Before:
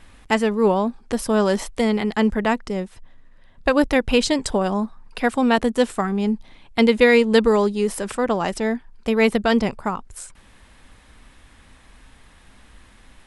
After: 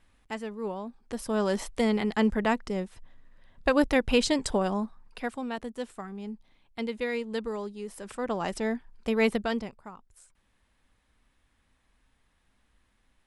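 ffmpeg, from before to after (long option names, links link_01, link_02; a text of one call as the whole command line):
ffmpeg -i in.wav -af "volume=4.5dB,afade=type=in:start_time=0.86:duration=0.94:silence=0.281838,afade=type=out:start_time=4.58:duration=0.89:silence=0.266073,afade=type=in:start_time=7.92:duration=0.62:silence=0.316228,afade=type=out:start_time=9.28:duration=0.45:silence=0.223872" out.wav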